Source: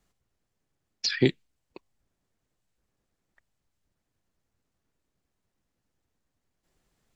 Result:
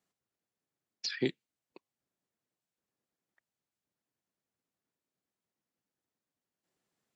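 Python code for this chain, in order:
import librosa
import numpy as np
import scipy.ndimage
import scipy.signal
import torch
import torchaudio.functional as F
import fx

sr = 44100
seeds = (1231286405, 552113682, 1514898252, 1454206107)

y = scipy.signal.sosfilt(scipy.signal.butter(2, 170.0, 'highpass', fs=sr, output='sos'), x)
y = F.gain(torch.from_numpy(y), -8.5).numpy()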